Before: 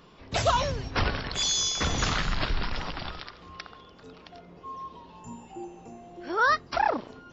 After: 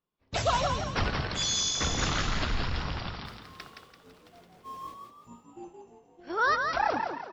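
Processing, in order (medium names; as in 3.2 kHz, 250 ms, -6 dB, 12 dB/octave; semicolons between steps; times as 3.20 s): 3.25–4.94 s: jump at every zero crossing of -42.5 dBFS; expander -35 dBFS; frequency-shifting echo 169 ms, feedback 41%, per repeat +48 Hz, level -5 dB; trim -3 dB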